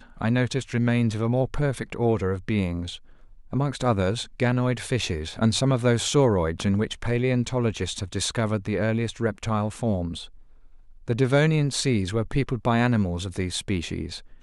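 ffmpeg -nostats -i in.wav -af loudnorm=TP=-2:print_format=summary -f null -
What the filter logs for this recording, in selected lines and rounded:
Input Integrated:    -25.0 LUFS
Input True Peak:      -9.3 dBTP
Input LRA:             2.5 LU
Input Threshold:     -35.3 LUFS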